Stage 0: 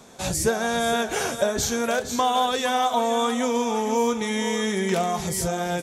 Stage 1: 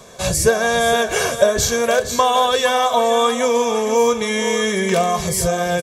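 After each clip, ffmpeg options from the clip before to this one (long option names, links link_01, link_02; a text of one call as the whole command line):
ffmpeg -i in.wav -af "aecho=1:1:1.8:0.59,volume=5.5dB" out.wav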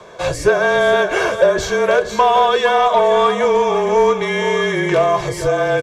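ffmpeg -i in.wav -filter_complex "[0:a]afreqshift=-30,aemphasis=mode=reproduction:type=cd,asplit=2[link_01][link_02];[link_02]highpass=frequency=720:poles=1,volume=13dB,asoftclip=type=tanh:threshold=-2dB[link_03];[link_01][link_03]amix=inputs=2:normalize=0,lowpass=frequency=1600:poles=1,volume=-6dB" out.wav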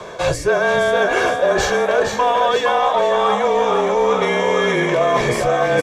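ffmpeg -i in.wav -filter_complex "[0:a]asplit=7[link_01][link_02][link_03][link_04][link_05][link_06][link_07];[link_02]adelay=464,afreqshift=67,volume=-6.5dB[link_08];[link_03]adelay=928,afreqshift=134,volume=-12.5dB[link_09];[link_04]adelay=1392,afreqshift=201,volume=-18.5dB[link_10];[link_05]adelay=1856,afreqshift=268,volume=-24.6dB[link_11];[link_06]adelay=2320,afreqshift=335,volume=-30.6dB[link_12];[link_07]adelay=2784,afreqshift=402,volume=-36.6dB[link_13];[link_01][link_08][link_09][link_10][link_11][link_12][link_13]amix=inputs=7:normalize=0,areverse,acompressor=threshold=-21dB:ratio=6,areverse,volume=7dB" out.wav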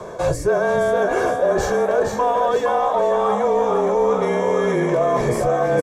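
ffmpeg -i in.wav -filter_complex "[0:a]equalizer=frequency=3000:width_type=o:width=2:gain=-14,asplit=2[link_01][link_02];[link_02]alimiter=limit=-15.5dB:level=0:latency=1:release=115,volume=-2dB[link_03];[link_01][link_03]amix=inputs=2:normalize=0,asplit=2[link_04][link_05];[link_05]adelay=350,highpass=300,lowpass=3400,asoftclip=type=hard:threshold=-13.5dB,volume=-22dB[link_06];[link_04][link_06]amix=inputs=2:normalize=0,volume=-3dB" out.wav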